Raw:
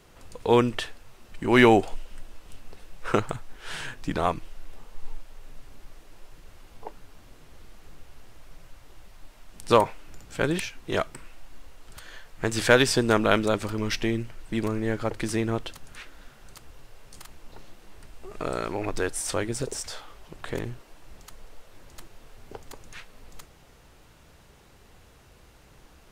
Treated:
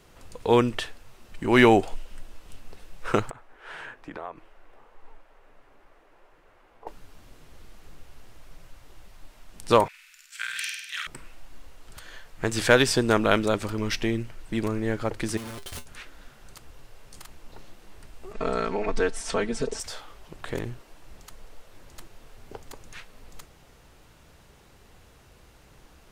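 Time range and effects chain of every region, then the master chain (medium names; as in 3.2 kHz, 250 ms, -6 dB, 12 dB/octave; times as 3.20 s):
3.30–6.87 s: three-band isolator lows -15 dB, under 330 Hz, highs -17 dB, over 2.3 kHz + compression 3:1, threshold -35 dBFS
9.88–11.07 s: expander -43 dBFS + inverse Chebyshev high-pass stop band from 790 Hz + flutter echo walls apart 8.6 m, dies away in 1 s
15.37–15.86 s: one-bit comparator + peaking EQ 9.5 kHz +4.5 dB 0.44 oct + feedback comb 80 Hz, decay 0.19 s, harmonics odd, mix 80%
18.33–19.80 s: distance through air 80 m + comb 4.5 ms, depth 97%
whole clip: none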